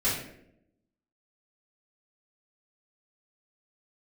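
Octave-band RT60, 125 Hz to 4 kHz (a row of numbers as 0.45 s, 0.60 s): 0.95 s, 1.0 s, 0.90 s, 0.60 s, 0.65 s, 0.45 s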